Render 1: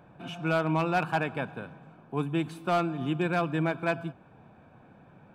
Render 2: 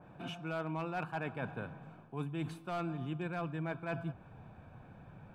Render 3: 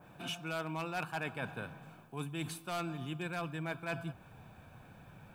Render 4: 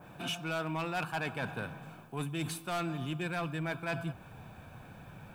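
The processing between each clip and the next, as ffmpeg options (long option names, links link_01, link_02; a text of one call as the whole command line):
ffmpeg -i in.wav -af "asubboost=boost=3.5:cutoff=130,areverse,acompressor=threshold=-34dB:ratio=6,areverse,adynamicequalizer=threshold=0.00178:dfrequency=2500:dqfactor=0.7:tfrequency=2500:tqfactor=0.7:attack=5:release=100:ratio=0.375:range=2.5:mode=cutabove:tftype=highshelf,volume=-1dB" out.wav
ffmpeg -i in.wav -af "crystalizer=i=5.5:c=0,volume=-2dB" out.wav
ffmpeg -i in.wav -af "asoftclip=type=tanh:threshold=-31.5dB,volume=5dB" out.wav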